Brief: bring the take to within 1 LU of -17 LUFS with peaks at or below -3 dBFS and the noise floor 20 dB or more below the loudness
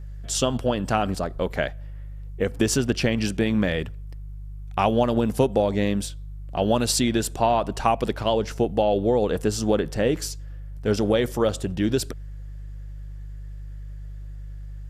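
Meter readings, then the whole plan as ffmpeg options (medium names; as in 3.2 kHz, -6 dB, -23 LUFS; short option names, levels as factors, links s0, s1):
hum 50 Hz; highest harmonic 150 Hz; hum level -33 dBFS; loudness -24.0 LUFS; peak level -6.5 dBFS; loudness target -17.0 LUFS
-> -af "bandreject=f=50:t=h:w=4,bandreject=f=100:t=h:w=4,bandreject=f=150:t=h:w=4"
-af "volume=2.24,alimiter=limit=0.708:level=0:latency=1"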